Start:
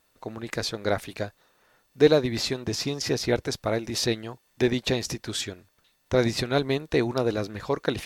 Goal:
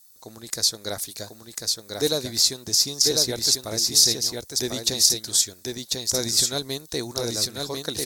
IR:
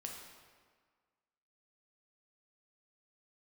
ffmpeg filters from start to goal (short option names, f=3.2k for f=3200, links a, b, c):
-af "aecho=1:1:1045:0.668,aexciter=amount=12.8:drive=3.1:freq=4k,volume=-7dB"